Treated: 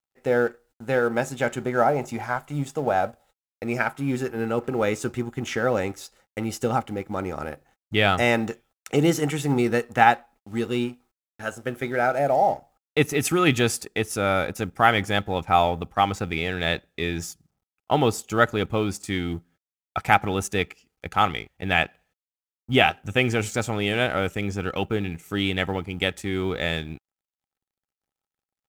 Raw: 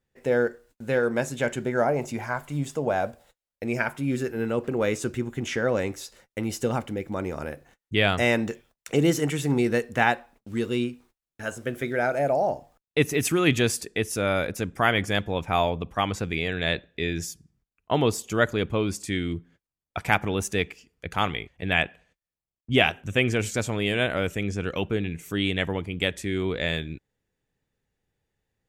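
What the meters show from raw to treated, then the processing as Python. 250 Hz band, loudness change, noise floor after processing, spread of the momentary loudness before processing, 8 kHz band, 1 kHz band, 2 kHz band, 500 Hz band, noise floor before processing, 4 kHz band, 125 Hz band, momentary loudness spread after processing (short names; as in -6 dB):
+1.0 dB, +2.0 dB, under -85 dBFS, 10 LU, 0.0 dB, +6.0 dB, +1.5 dB, +1.0 dB, under -85 dBFS, +1.0 dB, +0.5 dB, 12 LU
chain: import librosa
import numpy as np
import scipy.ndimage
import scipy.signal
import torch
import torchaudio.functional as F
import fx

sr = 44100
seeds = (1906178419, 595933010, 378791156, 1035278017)

y = fx.law_mismatch(x, sr, coded='A')
y = fx.small_body(y, sr, hz=(800.0, 1300.0), ring_ms=45, db=10)
y = y * 10.0 ** (1.5 / 20.0)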